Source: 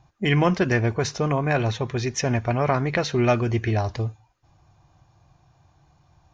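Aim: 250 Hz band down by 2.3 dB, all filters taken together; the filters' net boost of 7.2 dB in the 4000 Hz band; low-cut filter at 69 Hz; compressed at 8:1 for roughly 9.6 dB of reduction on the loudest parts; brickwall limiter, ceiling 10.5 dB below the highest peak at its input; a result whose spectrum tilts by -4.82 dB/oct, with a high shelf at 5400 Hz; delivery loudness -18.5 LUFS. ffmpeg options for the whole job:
-af "highpass=69,equalizer=f=250:t=o:g=-3.5,equalizer=f=4k:t=o:g=8,highshelf=f=5.4k:g=3.5,acompressor=threshold=-26dB:ratio=8,volume=13.5dB,alimiter=limit=-8.5dB:level=0:latency=1"

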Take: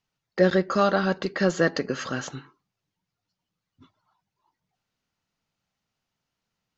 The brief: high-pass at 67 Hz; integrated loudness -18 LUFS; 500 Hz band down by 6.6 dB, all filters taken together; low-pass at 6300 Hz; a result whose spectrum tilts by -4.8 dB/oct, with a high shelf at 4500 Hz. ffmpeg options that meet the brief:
-af "highpass=67,lowpass=6.3k,equalizer=f=500:t=o:g=-8.5,highshelf=f=4.5k:g=-5.5,volume=9.5dB"

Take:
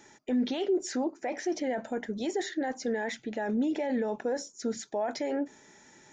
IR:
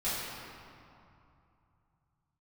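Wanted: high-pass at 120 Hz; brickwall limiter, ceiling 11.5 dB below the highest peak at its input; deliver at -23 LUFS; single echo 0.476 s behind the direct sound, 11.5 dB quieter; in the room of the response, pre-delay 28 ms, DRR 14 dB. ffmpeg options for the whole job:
-filter_complex "[0:a]highpass=120,alimiter=level_in=8dB:limit=-24dB:level=0:latency=1,volume=-8dB,aecho=1:1:476:0.266,asplit=2[a][b];[1:a]atrim=start_sample=2205,adelay=28[c];[b][c]afir=irnorm=-1:irlink=0,volume=-22dB[d];[a][d]amix=inputs=2:normalize=0,volume=16.5dB"

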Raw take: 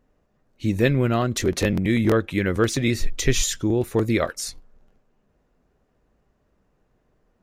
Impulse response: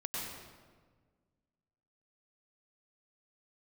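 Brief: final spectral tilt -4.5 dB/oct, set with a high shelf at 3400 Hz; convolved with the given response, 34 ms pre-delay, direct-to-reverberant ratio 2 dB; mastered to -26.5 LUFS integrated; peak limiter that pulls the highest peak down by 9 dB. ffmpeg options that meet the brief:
-filter_complex "[0:a]highshelf=f=3.4k:g=7.5,alimiter=limit=-13.5dB:level=0:latency=1,asplit=2[a][b];[1:a]atrim=start_sample=2205,adelay=34[c];[b][c]afir=irnorm=-1:irlink=0,volume=-4.5dB[d];[a][d]amix=inputs=2:normalize=0,volume=-5dB"

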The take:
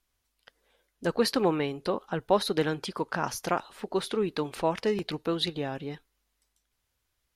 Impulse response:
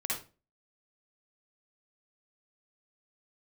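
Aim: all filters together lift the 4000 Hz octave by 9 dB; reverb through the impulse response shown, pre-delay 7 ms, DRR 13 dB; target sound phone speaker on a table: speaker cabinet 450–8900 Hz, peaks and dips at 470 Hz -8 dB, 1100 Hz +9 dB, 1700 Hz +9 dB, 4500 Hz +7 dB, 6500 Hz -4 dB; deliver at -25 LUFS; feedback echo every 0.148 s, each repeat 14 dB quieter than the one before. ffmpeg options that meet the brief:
-filter_complex "[0:a]equalizer=f=4k:t=o:g=6,aecho=1:1:148|296:0.2|0.0399,asplit=2[a][b];[1:a]atrim=start_sample=2205,adelay=7[c];[b][c]afir=irnorm=-1:irlink=0,volume=-17.5dB[d];[a][d]amix=inputs=2:normalize=0,highpass=f=450:w=0.5412,highpass=f=450:w=1.3066,equalizer=f=470:t=q:w=4:g=-8,equalizer=f=1.1k:t=q:w=4:g=9,equalizer=f=1.7k:t=q:w=4:g=9,equalizer=f=4.5k:t=q:w=4:g=7,equalizer=f=6.5k:t=q:w=4:g=-4,lowpass=f=8.9k:w=0.5412,lowpass=f=8.9k:w=1.3066,volume=2dB"

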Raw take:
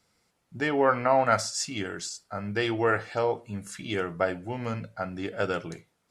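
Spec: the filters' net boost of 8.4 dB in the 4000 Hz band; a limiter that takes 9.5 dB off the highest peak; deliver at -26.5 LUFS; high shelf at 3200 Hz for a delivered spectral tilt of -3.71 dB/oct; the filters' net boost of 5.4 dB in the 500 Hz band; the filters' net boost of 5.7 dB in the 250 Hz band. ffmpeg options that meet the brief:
-af "equalizer=f=250:t=o:g=5.5,equalizer=f=500:t=o:g=5,highshelf=f=3.2k:g=3.5,equalizer=f=4k:t=o:g=8.5,volume=0.5dB,alimiter=limit=-14.5dB:level=0:latency=1"

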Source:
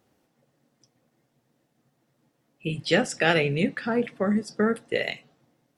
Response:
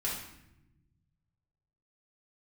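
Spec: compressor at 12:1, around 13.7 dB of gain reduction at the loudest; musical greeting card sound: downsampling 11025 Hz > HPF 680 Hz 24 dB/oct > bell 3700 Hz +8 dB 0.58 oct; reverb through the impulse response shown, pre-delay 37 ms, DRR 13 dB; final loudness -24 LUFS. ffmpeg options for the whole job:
-filter_complex "[0:a]acompressor=threshold=-29dB:ratio=12,asplit=2[a][b];[1:a]atrim=start_sample=2205,adelay=37[c];[b][c]afir=irnorm=-1:irlink=0,volume=-17.5dB[d];[a][d]amix=inputs=2:normalize=0,aresample=11025,aresample=44100,highpass=f=680:w=0.5412,highpass=f=680:w=1.3066,equalizer=f=3.7k:t=o:w=0.58:g=8,volume=12.5dB"

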